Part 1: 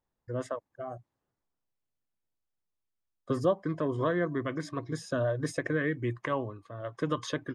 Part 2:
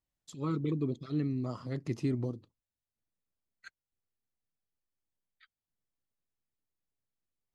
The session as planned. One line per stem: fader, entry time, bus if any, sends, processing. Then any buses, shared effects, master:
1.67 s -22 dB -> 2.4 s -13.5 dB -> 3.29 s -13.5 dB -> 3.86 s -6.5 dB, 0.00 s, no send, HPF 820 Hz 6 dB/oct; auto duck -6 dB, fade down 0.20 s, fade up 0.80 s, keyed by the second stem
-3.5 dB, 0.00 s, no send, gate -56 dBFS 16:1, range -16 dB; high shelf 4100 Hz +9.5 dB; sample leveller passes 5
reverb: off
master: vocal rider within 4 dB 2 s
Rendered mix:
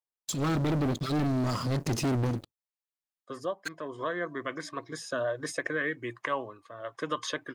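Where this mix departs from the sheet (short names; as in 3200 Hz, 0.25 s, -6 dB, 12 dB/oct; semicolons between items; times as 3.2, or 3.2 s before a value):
stem 1 -22.0 dB -> -11.5 dB; master: missing vocal rider within 4 dB 2 s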